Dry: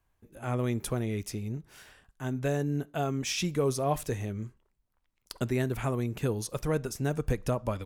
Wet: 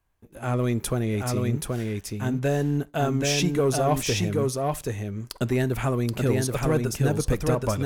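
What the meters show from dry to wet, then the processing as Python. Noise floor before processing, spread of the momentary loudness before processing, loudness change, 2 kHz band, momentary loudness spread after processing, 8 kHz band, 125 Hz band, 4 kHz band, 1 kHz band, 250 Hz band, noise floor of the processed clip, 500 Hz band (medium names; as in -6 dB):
-76 dBFS, 9 LU, +6.5 dB, +7.0 dB, 7 LU, +8.0 dB, +7.0 dB, +7.5 dB, +6.5 dB, +7.0 dB, -53 dBFS, +6.5 dB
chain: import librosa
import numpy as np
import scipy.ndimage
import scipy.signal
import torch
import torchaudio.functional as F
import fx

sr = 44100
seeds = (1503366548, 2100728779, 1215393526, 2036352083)

p1 = fx.leveller(x, sr, passes=1)
p2 = p1 + fx.echo_single(p1, sr, ms=778, db=-3.0, dry=0)
y = F.gain(torch.from_numpy(p2), 2.5).numpy()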